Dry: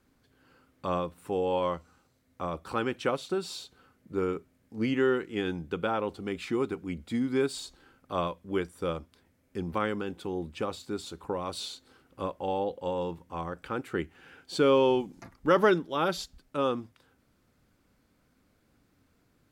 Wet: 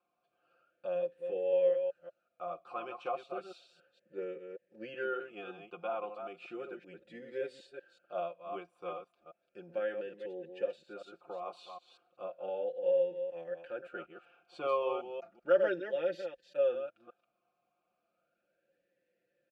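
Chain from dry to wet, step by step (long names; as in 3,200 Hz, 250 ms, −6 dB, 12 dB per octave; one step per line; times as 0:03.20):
delay that plays each chunk backwards 190 ms, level −7 dB
comb filter 5.7 ms, depth 80%
formant filter swept between two vowels a-e 0.34 Hz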